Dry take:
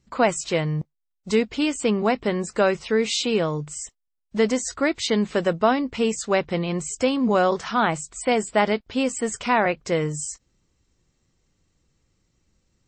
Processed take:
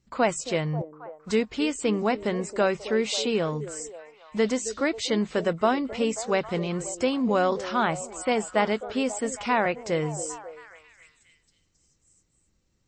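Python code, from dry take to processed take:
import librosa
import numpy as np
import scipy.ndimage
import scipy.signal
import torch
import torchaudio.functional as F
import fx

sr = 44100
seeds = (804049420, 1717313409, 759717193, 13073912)

y = fx.echo_stepped(x, sr, ms=269, hz=390.0, octaves=0.7, feedback_pct=70, wet_db=-10.0)
y = y * librosa.db_to_amplitude(-3.5)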